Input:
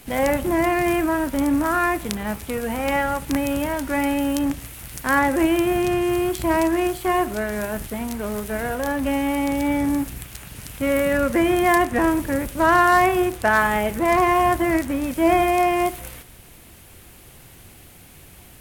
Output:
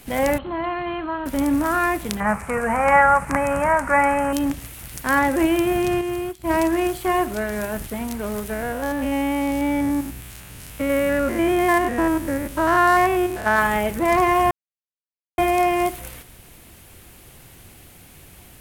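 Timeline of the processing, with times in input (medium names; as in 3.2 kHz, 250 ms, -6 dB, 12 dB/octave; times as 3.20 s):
0.38–1.26 s: rippled Chebyshev low-pass 4.3 kHz, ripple 9 dB
2.20–4.33 s: FFT filter 110 Hz 0 dB, 190 Hz +6 dB, 290 Hz -6 dB, 590 Hz +6 dB, 1.2 kHz +13 dB, 2.3 kHz +5 dB, 3.4 kHz -15 dB, 8.6 kHz +2 dB, 15 kHz -16 dB
6.01–6.53 s: upward expansion 2.5:1, over -30 dBFS
8.53–13.59 s: spectrogram pixelated in time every 100 ms
14.51–15.38 s: mute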